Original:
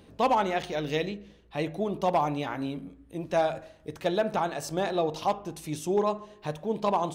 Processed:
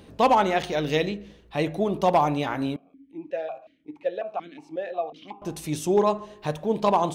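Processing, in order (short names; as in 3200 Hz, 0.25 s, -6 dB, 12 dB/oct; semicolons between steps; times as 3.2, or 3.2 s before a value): 2.76–5.42 vowel sequencer 5.5 Hz; gain +5 dB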